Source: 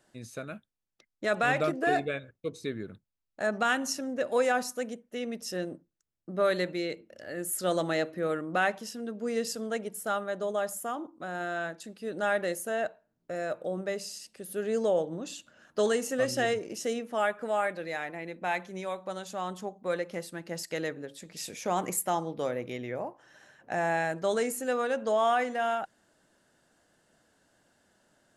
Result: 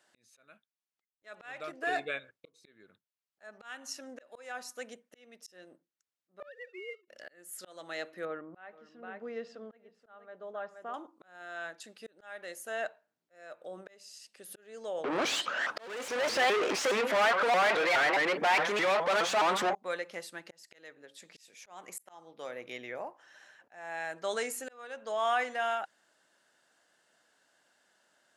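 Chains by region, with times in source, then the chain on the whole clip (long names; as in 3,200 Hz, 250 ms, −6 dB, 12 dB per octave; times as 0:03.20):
0:06.40–0:07.08: three sine waves on the formant tracks + low-shelf EQ 470 Hz −5.5 dB + leveller curve on the samples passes 1
0:08.25–0:10.94: head-to-tape spacing loss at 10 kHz 42 dB + single-tap delay 476 ms −11.5 dB
0:15.04–0:19.75: mid-hump overdrive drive 39 dB, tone 1,400 Hz, clips at −15 dBFS + pitch modulation by a square or saw wave saw up 4.8 Hz, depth 250 cents
whole clip: high-pass filter 1,300 Hz 6 dB per octave; high-shelf EQ 7,500 Hz −9 dB; volume swells 677 ms; level +3 dB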